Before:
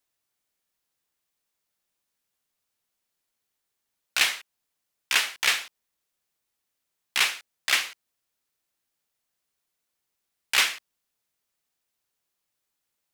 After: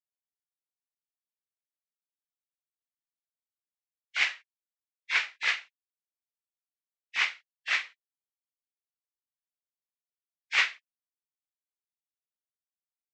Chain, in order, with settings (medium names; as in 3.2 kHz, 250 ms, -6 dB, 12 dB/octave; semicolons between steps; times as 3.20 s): knee-point frequency compression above 1.6 kHz 1.5:1; spectral contrast expander 1.5:1; trim -1.5 dB